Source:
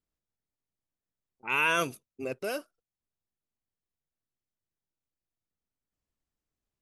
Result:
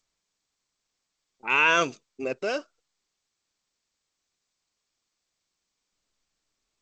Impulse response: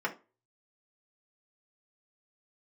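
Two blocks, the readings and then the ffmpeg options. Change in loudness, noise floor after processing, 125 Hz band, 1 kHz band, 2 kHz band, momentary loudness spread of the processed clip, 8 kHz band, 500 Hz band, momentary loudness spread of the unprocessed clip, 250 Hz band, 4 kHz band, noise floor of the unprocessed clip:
+5.5 dB, -82 dBFS, 0.0 dB, +5.5 dB, +5.5 dB, 15 LU, +3.0 dB, +5.0 dB, 14 LU, +3.5 dB, +5.5 dB, under -85 dBFS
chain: -af "equalizer=f=92:w=0.86:g=-10,volume=5.5dB" -ar 16000 -c:a g722

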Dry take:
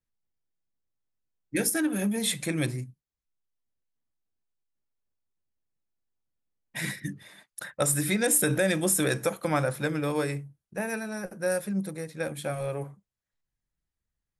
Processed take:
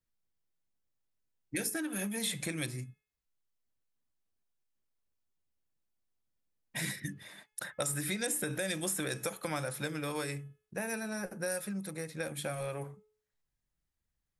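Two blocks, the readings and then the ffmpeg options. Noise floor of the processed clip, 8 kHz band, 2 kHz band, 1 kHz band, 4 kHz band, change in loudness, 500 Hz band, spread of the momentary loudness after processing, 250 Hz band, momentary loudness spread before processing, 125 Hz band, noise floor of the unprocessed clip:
under -85 dBFS, -7.5 dB, -6.0 dB, -7.5 dB, -4.5 dB, -8.0 dB, -9.0 dB, 10 LU, -9.0 dB, 15 LU, -8.5 dB, under -85 dBFS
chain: -filter_complex "[0:a]bandreject=f=427.8:t=h:w=4,bandreject=f=855.6:t=h:w=4,bandreject=f=1.2834k:t=h:w=4,bandreject=f=1.7112k:t=h:w=4,bandreject=f=2.139k:t=h:w=4,bandreject=f=2.5668k:t=h:w=4,bandreject=f=2.9946k:t=h:w=4,bandreject=f=3.4224k:t=h:w=4,acrossover=split=970|3100[a][b][c];[a]acompressor=threshold=-37dB:ratio=4[d];[b]acompressor=threshold=-42dB:ratio=4[e];[c]acompressor=threshold=-35dB:ratio=4[f];[d][e][f]amix=inputs=3:normalize=0"

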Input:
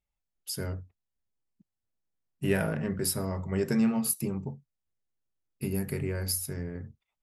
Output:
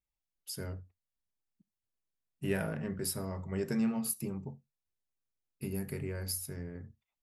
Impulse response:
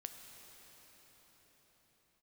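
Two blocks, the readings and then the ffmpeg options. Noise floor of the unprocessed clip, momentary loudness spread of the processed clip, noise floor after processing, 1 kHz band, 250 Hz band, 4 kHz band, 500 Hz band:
under -85 dBFS, 16 LU, under -85 dBFS, -6.0 dB, -5.5 dB, -6.0 dB, -6.0 dB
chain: -filter_complex "[0:a]asplit=2[a][b];[1:a]atrim=start_sample=2205,atrim=end_sample=3969[c];[b][c]afir=irnorm=-1:irlink=0,volume=-4dB[d];[a][d]amix=inputs=2:normalize=0,volume=-8.5dB"

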